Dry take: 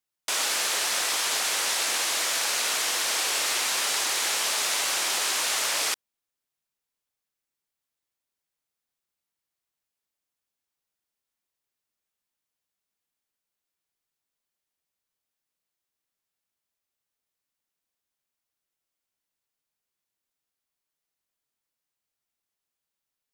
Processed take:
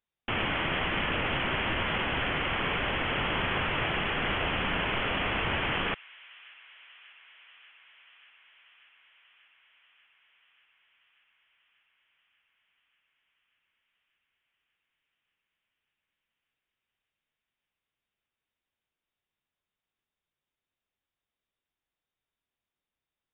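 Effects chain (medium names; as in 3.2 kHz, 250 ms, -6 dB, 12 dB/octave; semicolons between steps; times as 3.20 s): peaking EQ 76 Hz +6 dB 1.2 oct; frequency inversion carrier 3.7 kHz; bass shelf 230 Hz +5.5 dB; feedback echo behind a high-pass 588 ms, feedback 78%, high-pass 2.1 kHz, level -20 dB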